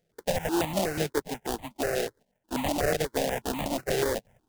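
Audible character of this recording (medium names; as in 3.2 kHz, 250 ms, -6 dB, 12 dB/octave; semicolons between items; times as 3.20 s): aliases and images of a low sample rate 1.2 kHz, jitter 20%; notches that jump at a steady rate 8.2 Hz 270–1500 Hz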